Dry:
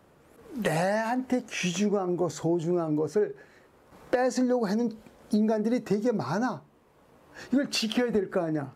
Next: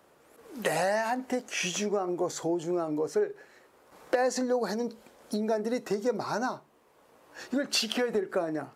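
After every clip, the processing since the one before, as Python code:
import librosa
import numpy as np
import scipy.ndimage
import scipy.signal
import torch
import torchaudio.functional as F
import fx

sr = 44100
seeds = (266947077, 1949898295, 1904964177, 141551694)

y = fx.bass_treble(x, sr, bass_db=-12, treble_db=3)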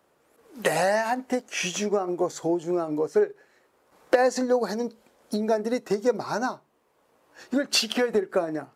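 y = fx.upward_expand(x, sr, threshold_db=-45.0, expansion=1.5)
y = y * 10.0 ** (7.0 / 20.0)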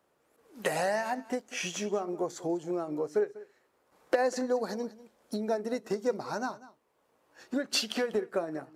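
y = x + 10.0 ** (-18.5 / 20.0) * np.pad(x, (int(195 * sr / 1000.0), 0))[:len(x)]
y = y * 10.0 ** (-6.5 / 20.0)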